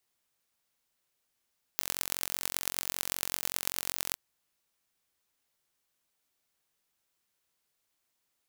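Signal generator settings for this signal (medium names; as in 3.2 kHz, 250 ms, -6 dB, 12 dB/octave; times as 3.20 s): pulse train 45.1 per s, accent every 5, -1.5 dBFS 2.37 s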